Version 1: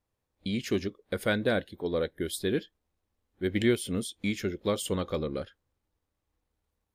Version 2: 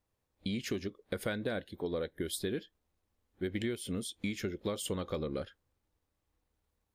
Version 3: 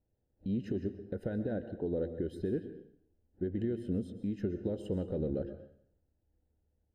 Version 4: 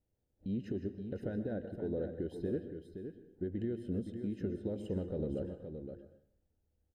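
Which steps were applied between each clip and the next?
compressor 6:1, threshold -32 dBFS, peak gain reduction 12.5 dB
limiter -27.5 dBFS, peak gain reduction 6 dB; running mean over 39 samples; plate-style reverb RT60 0.66 s, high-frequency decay 0.85×, pre-delay 0.11 s, DRR 10.5 dB; gain +4.5 dB
echo 0.52 s -8 dB; gain -3 dB

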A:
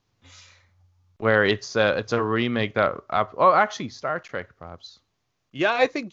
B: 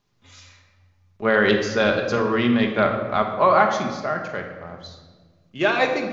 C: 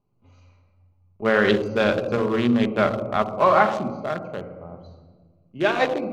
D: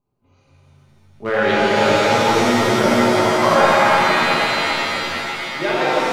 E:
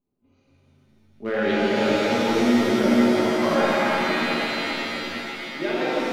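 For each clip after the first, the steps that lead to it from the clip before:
shoebox room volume 1300 m³, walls mixed, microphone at 1.3 m
Wiener smoothing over 25 samples
shimmer reverb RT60 3.9 s, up +7 st, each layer -2 dB, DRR -6.5 dB; gain -4 dB
graphic EQ 125/250/1000/8000 Hz -7/+9/-6/-5 dB; gain -6 dB

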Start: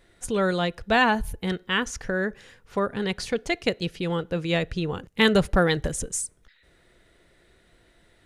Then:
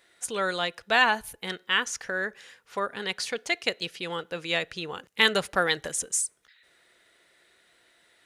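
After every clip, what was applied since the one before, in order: HPF 1200 Hz 6 dB/oct; gain +2.5 dB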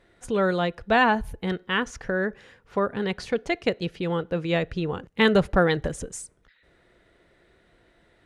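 tilt -4.5 dB/oct; gain +2.5 dB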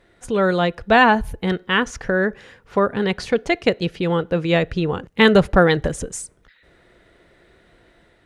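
AGC gain up to 3 dB; gain +3.5 dB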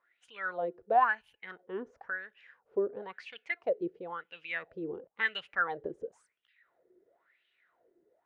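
wah 0.97 Hz 360–3000 Hz, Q 7.5; gain -4 dB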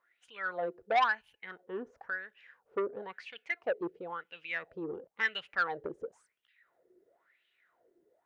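core saturation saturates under 1500 Hz

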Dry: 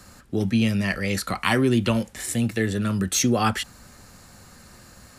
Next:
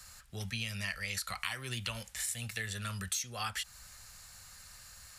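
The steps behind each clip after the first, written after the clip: passive tone stack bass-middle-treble 10-0-10; compressor 10:1, threshold -33 dBFS, peak gain reduction 14 dB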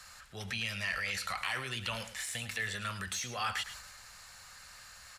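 transient shaper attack -2 dB, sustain +7 dB; overdrive pedal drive 11 dB, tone 2600 Hz, clips at -19 dBFS; echo 0.106 s -12 dB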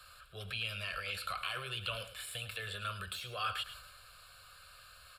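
fixed phaser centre 1300 Hz, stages 8; on a send at -23 dB: reverb RT60 1.7 s, pre-delay 3 ms

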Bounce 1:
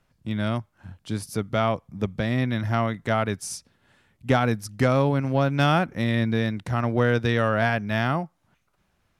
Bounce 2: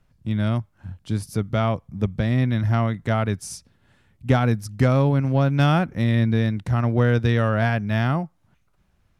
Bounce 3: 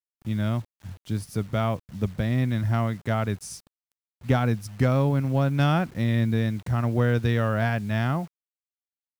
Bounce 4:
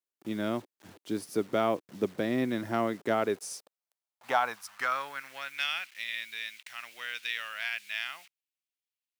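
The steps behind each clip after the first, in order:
low shelf 180 Hz +10.5 dB; gain -1.5 dB
bit-crush 8-bit; gain -3.5 dB
high-pass sweep 340 Hz -> 2500 Hz, 3.14–5.74; gain -1.5 dB

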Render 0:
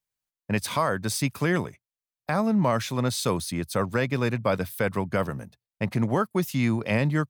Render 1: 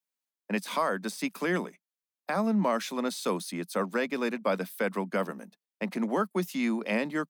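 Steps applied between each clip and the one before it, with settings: steep high-pass 180 Hz 72 dB/oct; de-esser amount 60%; gain -3 dB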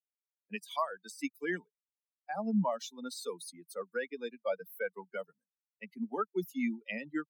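per-bin expansion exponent 3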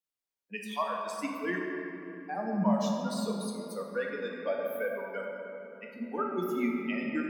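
shoebox room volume 160 m³, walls hard, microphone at 0.52 m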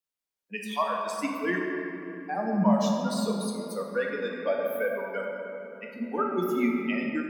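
AGC gain up to 4.5 dB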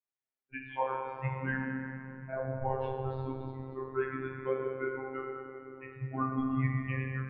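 chorus 0.29 Hz, delay 15.5 ms, depth 3.3 ms; mistuned SSB -130 Hz 200–2700 Hz; robotiser 132 Hz

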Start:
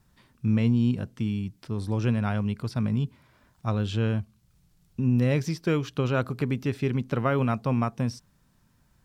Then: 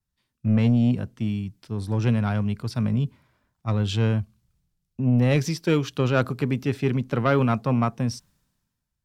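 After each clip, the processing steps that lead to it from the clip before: sine folder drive 3 dB, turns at -12 dBFS; three-band expander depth 70%; gain -2.5 dB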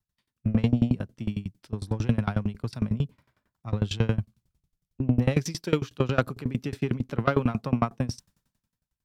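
dB-ramp tremolo decaying 11 Hz, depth 24 dB; gain +3.5 dB

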